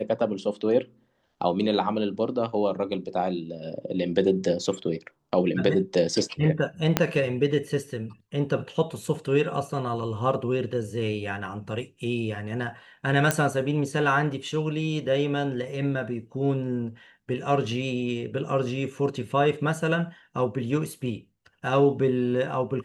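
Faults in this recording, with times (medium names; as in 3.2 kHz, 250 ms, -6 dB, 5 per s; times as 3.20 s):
6.97 s: pop -4 dBFS
13.31 s: pop -7 dBFS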